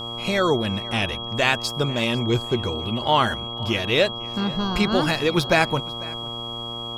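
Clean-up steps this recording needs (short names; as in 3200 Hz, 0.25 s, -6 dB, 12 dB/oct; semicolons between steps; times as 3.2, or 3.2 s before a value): de-hum 117.2 Hz, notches 11; notch 3300 Hz, Q 30; inverse comb 0.497 s -21 dB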